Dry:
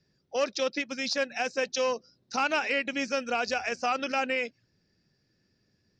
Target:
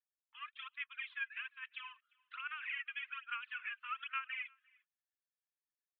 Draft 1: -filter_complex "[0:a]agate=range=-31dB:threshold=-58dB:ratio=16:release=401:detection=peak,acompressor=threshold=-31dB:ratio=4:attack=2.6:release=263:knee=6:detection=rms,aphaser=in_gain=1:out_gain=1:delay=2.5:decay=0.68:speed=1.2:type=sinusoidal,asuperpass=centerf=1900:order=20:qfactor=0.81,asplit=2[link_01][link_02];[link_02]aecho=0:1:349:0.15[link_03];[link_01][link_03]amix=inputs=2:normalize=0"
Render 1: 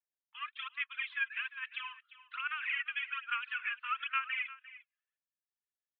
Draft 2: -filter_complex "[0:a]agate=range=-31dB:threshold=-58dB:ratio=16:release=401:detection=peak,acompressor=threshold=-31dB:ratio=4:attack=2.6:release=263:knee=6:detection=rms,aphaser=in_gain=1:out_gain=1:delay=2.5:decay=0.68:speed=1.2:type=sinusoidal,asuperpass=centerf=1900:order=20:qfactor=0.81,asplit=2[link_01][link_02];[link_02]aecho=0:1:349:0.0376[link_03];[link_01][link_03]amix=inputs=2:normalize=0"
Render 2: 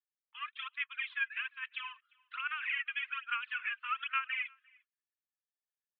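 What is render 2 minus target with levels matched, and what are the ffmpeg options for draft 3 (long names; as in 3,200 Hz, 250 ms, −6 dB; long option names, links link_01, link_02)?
downward compressor: peak gain reduction −6.5 dB
-filter_complex "[0:a]agate=range=-31dB:threshold=-58dB:ratio=16:release=401:detection=peak,acompressor=threshold=-39.5dB:ratio=4:attack=2.6:release=263:knee=6:detection=rms,aphaser=in_gain=1:out_gain=1:delay=2.5:decay=0.68:speed=1.2:type=sinusoidal,asuperpass=centerf=1900:order=20:qfactor=0.81,asplit=2[link_01][link_02];[link_02]aecho=0:1:349:0.0376[link_03];[link_01][link_03]amix=inputs=2:normalize=0"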